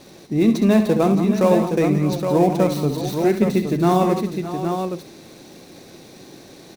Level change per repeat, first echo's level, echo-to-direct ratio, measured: repeats not evenly spaced, −9.5 dB, −3.0 dB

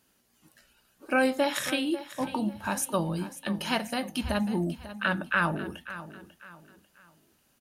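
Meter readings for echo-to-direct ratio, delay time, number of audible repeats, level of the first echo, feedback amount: −13.5 dB, 544 ms, 3, −14.0 dB, 34%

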